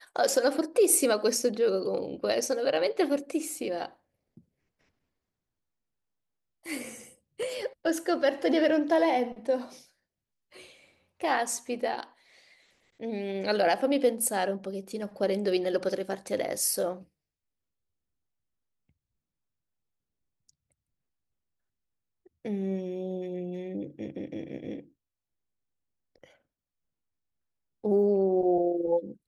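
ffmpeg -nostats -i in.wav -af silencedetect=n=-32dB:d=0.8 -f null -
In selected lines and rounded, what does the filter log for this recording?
silence_start: 3.86
silence_end: 6.67 | silence_duration: 2.82
silence_start: 9.62
silence_end: 11.23 | silence_duration: 1.61
silence_start: 12.03
silence_end: 13.03 | silence_duration: 1.00
silence_start: 16.93
silence_end: 22.45 | silence_duration: 5.52
silence_start: 24.79
silence_end: 27.85 | silence_duration: 3.05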